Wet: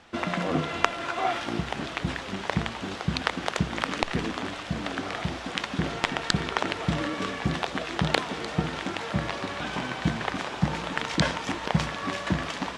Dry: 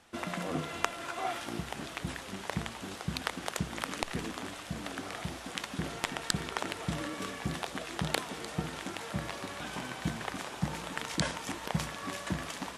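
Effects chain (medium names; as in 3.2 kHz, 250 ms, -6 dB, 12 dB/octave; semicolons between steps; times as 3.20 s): low-pass 4.9 kHz 12 dB/octave; trim +8 dB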